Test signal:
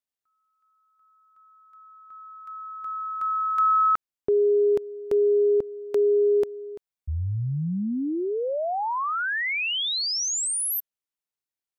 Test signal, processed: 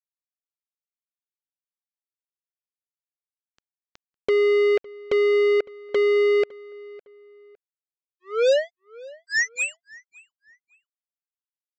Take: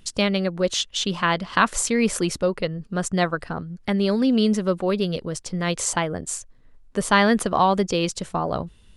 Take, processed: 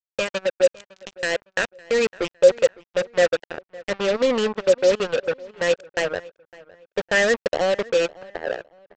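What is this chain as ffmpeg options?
-filter_complex "[0:a]agate=range=-33dB:threshold=-41dB:ratio=3:release=65:detection=rms,asplit=3[a][b][c];[a]bandpass=f=530:t=q:w=8,volume=0dB[d];[b]bandpass=f=1.84k:t=q:w=8,volume=-6dB[e];[c]bandpass=f=2.48k:t=q:w=8,volume=-9dB[f];[d][e][f]amix=inputs=3:normalize=0,dynaudnorm=f=300:g=11:m=4dB,aresample=16000,acrusher=bits=4:mix=0:aa=0.5,aresample=44100,acontrast=50,asplit=2[g][h];[h]adelay=558,lowpass=f=3k:p=1,volume=-21.5dB,asplit=2[i][j];[j]adelay=558,lowpass=f=3k:p=1,volume=0.34[k];[g][i][k]amix=inputs=3:normalize=0,volume=2dB"

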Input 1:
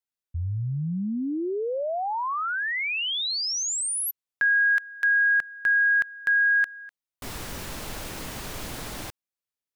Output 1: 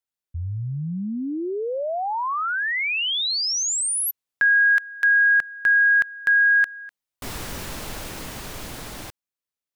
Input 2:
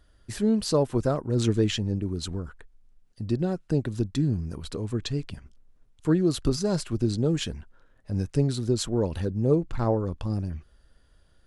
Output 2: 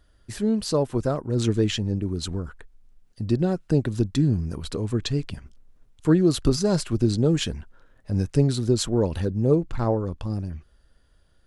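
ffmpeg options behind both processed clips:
-af "dynaudnorm=f=130:g=31:m=4dB"

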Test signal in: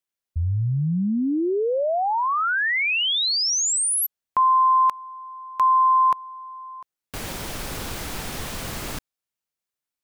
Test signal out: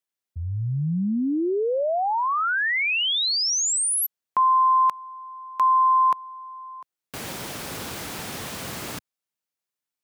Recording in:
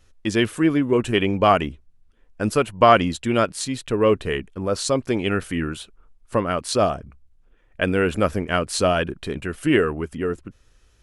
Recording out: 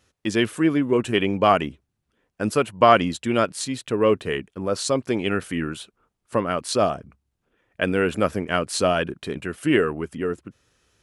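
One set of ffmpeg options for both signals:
-af "highpass=110,volume=-1dB"

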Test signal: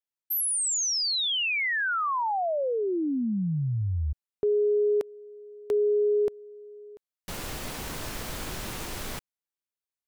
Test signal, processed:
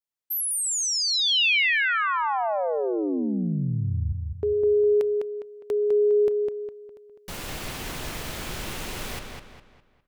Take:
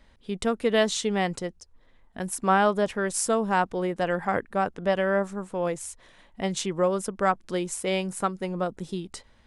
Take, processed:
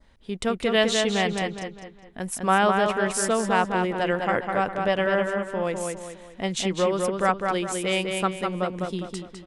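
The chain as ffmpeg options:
-filter_complex "[0:a]adynamicequalizer=threshold=0.00631:dfrequency=2700:dqfactor=1.2:tfrequency=2700:tqfactor=1.2:attack=5:release=100:ratio=0.375:range=3:mode=boostabove:tftype=bell,asplit=2[a][b];[b]adelay=204,lowpass=f=4.4k:p=1,volume=-4dB,asplit=2[c][d];[d]adelay=204,lowpass=f=4.4k:p=1,volume=0.4,asplit=2[e][f];[f]adelay=204,lowpass=f=4.4k:p=1,volume=0.4,asplit=2[g][h];[h]adelay=204,lowpass=f=4.4k:p=1,volume=0.4,asplit=2[i][j];[j]adelay=204,lowpass=f=4.4k:p=1,volume=0.4[k];[c][e][g][i][k]amix=inputs=5:normalize=0[l];[a][l]amix=inputs=2:normalize=0"

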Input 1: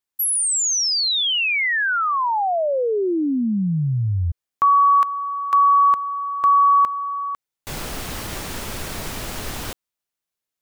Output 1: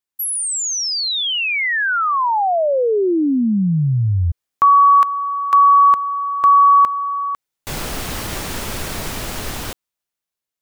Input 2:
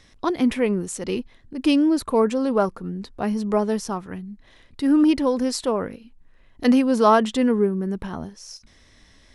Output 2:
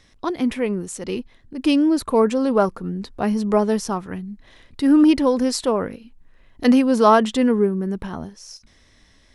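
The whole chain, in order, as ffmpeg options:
-af "dynaudnorm=f=730:g=5:m=6dB,volume=-1.5dB"

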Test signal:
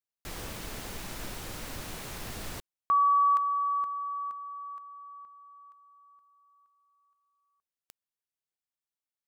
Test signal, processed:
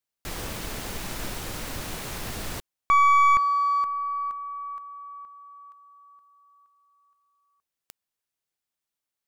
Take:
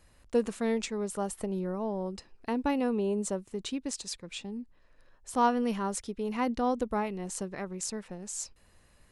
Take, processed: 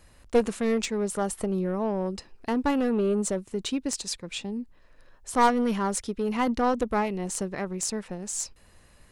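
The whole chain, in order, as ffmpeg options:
-filter_complex "[0:a]asplit=2[a][b];[b]asoftclip=type=hard:threshold=-26.5dB,volume=-11dB[c];[a][c]amix=inputs=2:normalize=0,aeval=exprs='0.2*(cos(1*acos(clip(val(0)/0.2,-1,1)))-cos(1*PI/2))+0.0447*(cos(2*acos(clip(val(0)/0.2,-1,1)))-cos(2*PI/2))+0.01*(cos(4*acos(clip(val(0)/0.2,-1,1)))-cos(4*PI/2))+0.0316*(cos(6*acos(clip(val(0)/0.2,-1,1)))-cos(6*PI/2))+0.0224*(cos(8*acos(clip(val(0)/0.2,-1,1)))-cos(8*PI/2))':c=same,volume=3.5dB"

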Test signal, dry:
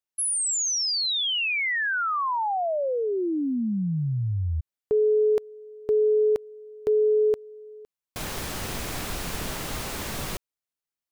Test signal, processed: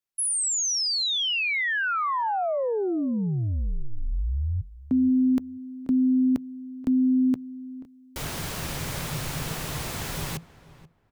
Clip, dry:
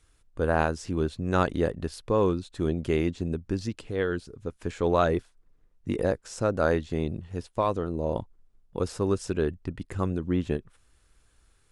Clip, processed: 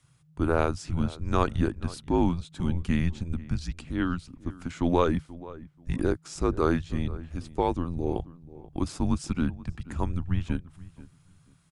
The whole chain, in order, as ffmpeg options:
-filter_complex "[0:a]asplit=2[a][b];[b]adelay=483,lowpass=f=2k:p=1,volume=-18dB,asplit=2[c][d];[d]adelay=483,lowpass=f=2k:p=1,volume=0.21[e];[a][c][e]amix=inputs=3:normalize=0,afreqshift=-170"

